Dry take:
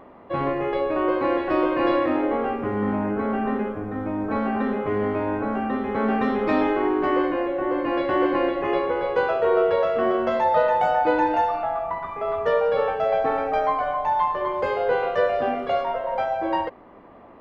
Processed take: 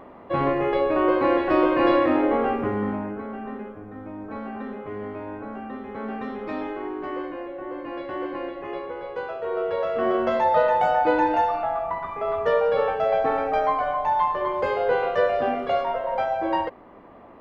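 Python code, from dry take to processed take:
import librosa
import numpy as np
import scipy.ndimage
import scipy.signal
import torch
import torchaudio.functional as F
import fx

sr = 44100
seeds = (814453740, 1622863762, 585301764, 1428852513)

y = fx.gain(x, sr, db=fx.line((2.61, 2.0), (3.28, -9.5), (9.41, -9.5), (10.16, 0.0)))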